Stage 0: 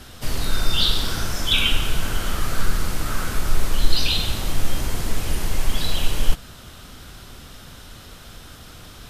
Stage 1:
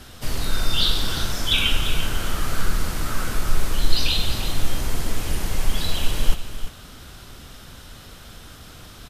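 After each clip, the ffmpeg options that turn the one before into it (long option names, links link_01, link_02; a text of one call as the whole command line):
ffmpeg -i in.wav -af "aecho=1:1:345:0.282,volume=-1dB" out.wav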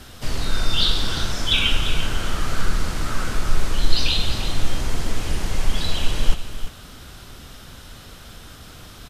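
ffmpeg -i in.wav -filter_complex "[0:a]acrossover=split=8900[link_01][link_02];[link_02]acompressor=threshold=-52dB:ratio=4:attack=1:release=60[link_03];[link_01][link_03]amix=inputs=2:normalize=0,volume=1dB" out.wav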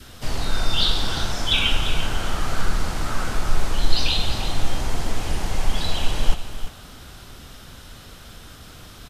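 ffmpeg -i in.wav -af "adynamicequalizer=threshold=0.00355:dfrequency=790:dqfactor=2.1:tfrequency=790:tqfactor=2.1:attack=5:release=100:ratio=0.375:range=3:mode=boostabove:tftype=bell,volume=-1dB" out.wav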